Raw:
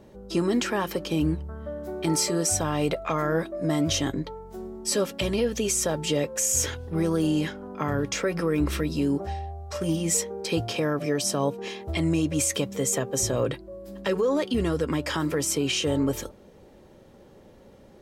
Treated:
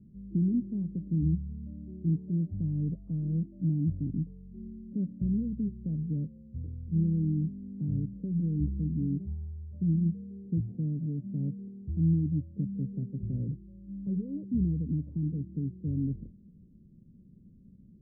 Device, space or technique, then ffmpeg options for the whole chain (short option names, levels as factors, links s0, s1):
the neighbour's flat through the wall: -af "lowpass=f=230:w=0.5412,lowpass=f=230:w=1.3066,equalizer=f=180:t=o:w=0.83:g=7.5,volume=0.708"